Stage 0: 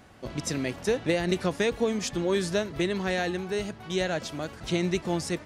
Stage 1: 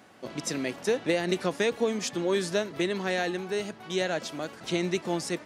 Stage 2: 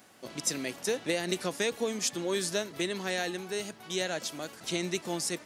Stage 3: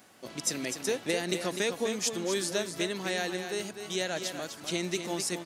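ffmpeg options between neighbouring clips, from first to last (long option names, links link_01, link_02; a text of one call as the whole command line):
ffmpeg -i in.wav -af "highpass=200" out.wav
ffmpeg -i in.wav -af "crystalizer=i=2.5:c=0,volume=-5dB" out.wav
ffmpeg -i in.wav -af "aecho=1:1:251:0.398" out.wav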